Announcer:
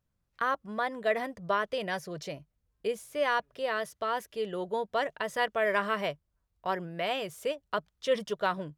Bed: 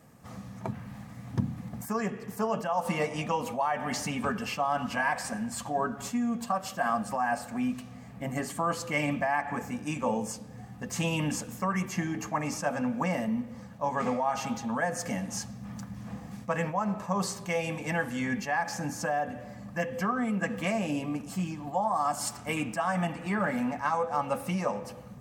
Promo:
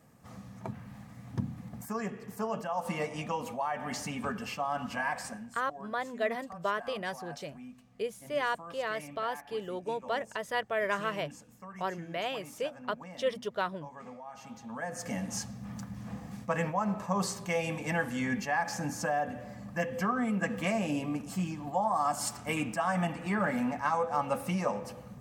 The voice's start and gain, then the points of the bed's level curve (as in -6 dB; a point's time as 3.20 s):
5.15 s, -3.0 dB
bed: 5.25 s -4.5 dB
5.60 s -17.5 dB
14.30 s -17.5 dB
15.24 s -1 dB